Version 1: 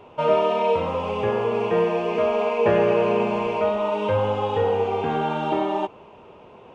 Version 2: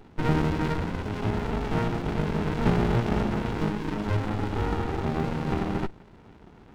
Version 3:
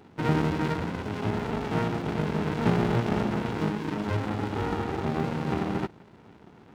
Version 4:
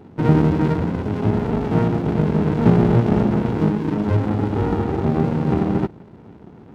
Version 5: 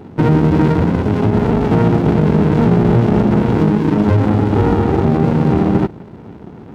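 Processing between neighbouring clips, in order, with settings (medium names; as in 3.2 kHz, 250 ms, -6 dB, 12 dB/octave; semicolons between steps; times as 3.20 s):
sliding maximum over 65 samples
high-pass 100 Hz 12 dB/octave
tilt shelf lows +6.5 dB, about 900 Hz; trim +4.5 dB
peak limiter -12 dBFS, peak gain reduction 10 dB; trim +8 dB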